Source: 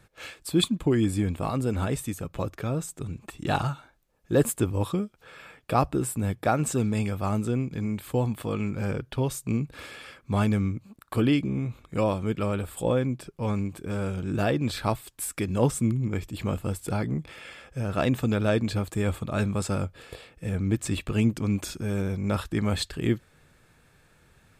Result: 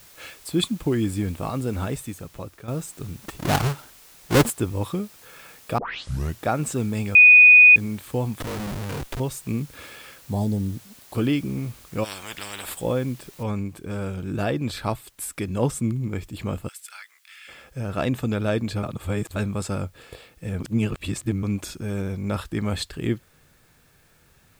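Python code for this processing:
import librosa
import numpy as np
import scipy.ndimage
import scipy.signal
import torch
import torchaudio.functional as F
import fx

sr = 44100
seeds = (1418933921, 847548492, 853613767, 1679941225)

y = fx.halfwave_hold(x, sr, at=(3.23, 4.49), fade=0.02)
y = fx.schmitt(y, sr, flips_db=-38.5, at=(8.4, 9.2))
y = fx.ellip_bandstop(y, sr, low_hz=870.0, high_hz=3900.0, order=3, stop_db=40, at=(10.21, 11.15))
y = fx.spectral_comp(y, sr, ratio=10.0, at=(12.03, 12.73), fade=0.02)
y = fx.noise_floor_step(y, sr, seeds[0], at_s=13.43, before_db=-50, after_db=-64, tilt_db=0.0)
y = fx.highpass(y, sr, hz=1500.0, slope=24, at=(16.67, 17.47), fade=0.02)
y = fx.edit(y, sr, fx.fade_out_to(start_s=1.84, length_s=0.84, floor_db=-10.5),
    fx.tape_start(start_s=5.78, length_s=0.62),
    fx.bleep(start_s=7.15, length_s=0.61, hz=2480.0, db=-7.0),
    fx.reverse_span(start_s=18.83, length_s=0.53),
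    fx.reverse_span(start_s=20.6, length_s=0.83), tone=tone)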